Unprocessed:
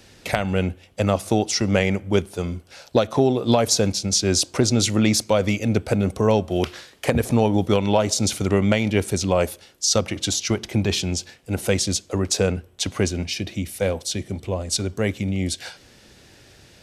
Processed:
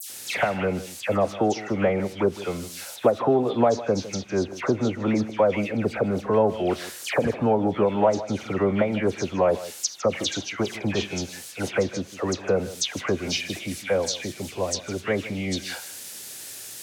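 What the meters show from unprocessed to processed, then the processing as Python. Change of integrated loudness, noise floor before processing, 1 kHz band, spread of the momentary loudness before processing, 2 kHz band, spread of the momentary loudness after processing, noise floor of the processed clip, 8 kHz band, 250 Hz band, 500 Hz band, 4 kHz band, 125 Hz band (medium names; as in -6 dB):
-3.0 dB, -51 dBFS, +0.5 dB, 9 LU, -1.5 dB, 10 LU, -40 dBFS, -8.5 dB, -4.0 dB, -0.5 dB, -6.5 dB, -8.0 dB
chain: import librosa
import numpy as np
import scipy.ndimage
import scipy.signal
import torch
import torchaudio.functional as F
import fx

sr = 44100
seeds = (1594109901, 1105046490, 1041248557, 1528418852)

p1 = fx.dmg_noise_colour(x, sr, seeds[0], colour='violet', level_db=-33.0)
p2 = np.clip(p1, -10.0 ** (-12.0 / 20.0), 10.0 ** (-12.0 / 20.0))
p3 = p1 + F.gain(torch.from_numpy(p2), -7.0).numpy()
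p4 = fx.dynamic_eq(p3, sr, hz=6300.0, q=4.7, threshold_db=-38.0, ratio=4.0, max_db=8)
p5 = fx.env_lowpass_down(p4, sr, base_hz=1200.0, full_db=-12.0)
p6 = scipy.signal.sosfilt(scipy.signal.butter(2, 100.0, 'highpass', fs=sr, output='sos'), p5)
p7 = fx.low_shelf(p6, sr, hz=330.0, db=-10.5)
p8 = fx.dispersion(p7, sr, late='lows', ms=98.0, hz=2300.0)
y = p8 + fx.echo_single(p8, sr, ms=156, db=-16.0, dry=0)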